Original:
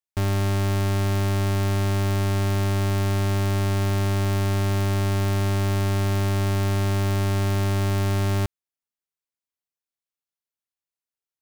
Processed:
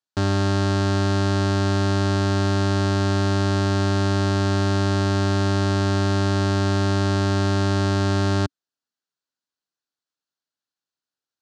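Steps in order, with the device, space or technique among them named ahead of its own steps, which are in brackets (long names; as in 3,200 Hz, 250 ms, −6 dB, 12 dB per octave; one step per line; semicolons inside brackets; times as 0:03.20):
car door speaker (loudspeaker in its box 100–7,200 Hz, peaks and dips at 280 Hz +5 dB, 1,500 Hz +6 dB, 2,200 Hz −9 dB, 4,300 Hz +5 dB)
level +3.5 dB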